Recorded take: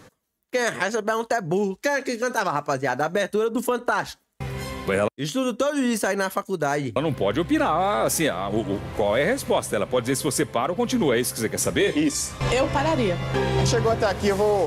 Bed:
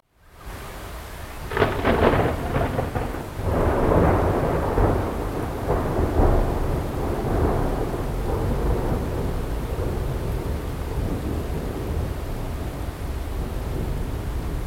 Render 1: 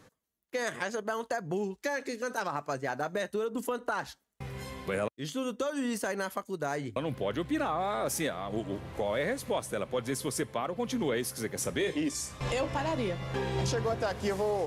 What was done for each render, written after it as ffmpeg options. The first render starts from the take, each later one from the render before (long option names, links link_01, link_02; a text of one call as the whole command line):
ffmpeg -i in.wav -af "volume=-9.5dB" out.wav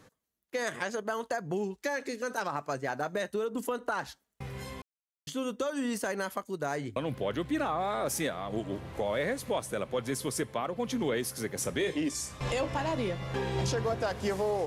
ffmpeg -i in.wav -filter_complex "[0:a]asplit=3[link_01][link_02][link_03];[link_01]atrim=end=4.82,asetpts=PTS-STARTPTS,afade=type=out:start_time=4.816:duration=0.004:curve=hsin[link_04];[link_02]atrim=start=4.82:end=5.27,asetpts=PTS-STARTPTS,volume=0[link_05];[link_03]atrim=start=5.27,asetpts=PTS-STARTPTS,afade=type=in:duration=0.004:curve=hsin[link_06];[link_04][link_05][link_06]concat=n=3:v=0:a=1" out.wav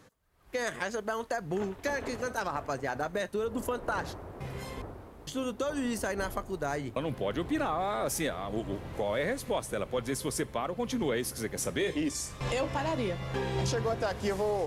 ffmpeg -i in.wav -i bed.wav -filter_complex "[1:a]volume=-23.5dB[link_01];[0:a][link_01]amix=inputs=2:normalize=0" out.wav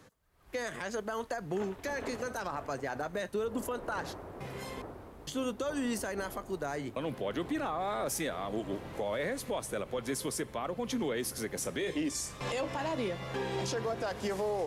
ffmpeg -i in.wav -filter_complex "[0:a]acrossover=split=160[link_01][link_02];[link_01]acompressor=threshold=-50dB:ratio=6[link_03];[link_02]alimiter=level_in=1.5dB:limit=-24dB:level=0:latency=1:release=64,volume=-1.5dB[link_04];[link_03][link_04]amix=inputs=2:normalize=0" out.wav